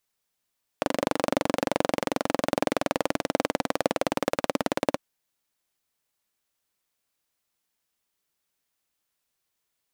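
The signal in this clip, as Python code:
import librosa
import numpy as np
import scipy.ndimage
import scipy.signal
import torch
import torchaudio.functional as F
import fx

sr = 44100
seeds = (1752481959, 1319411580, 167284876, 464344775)

y = fx.engine_single_rev(sr, seeds[0], length_s=4.15, rpm=2900, resonances_hz=(290.0, 530.0), end_rpm=2100)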